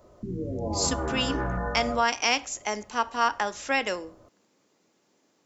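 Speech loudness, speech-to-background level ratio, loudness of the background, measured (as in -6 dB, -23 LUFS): -27.5 LUFS, 4.5 dB, -32.0 LUFS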